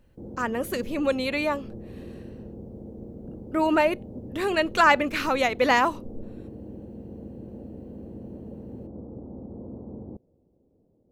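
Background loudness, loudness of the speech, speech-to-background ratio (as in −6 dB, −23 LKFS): −41.5 LKFS, −24.0 LKFS, 17.5 dB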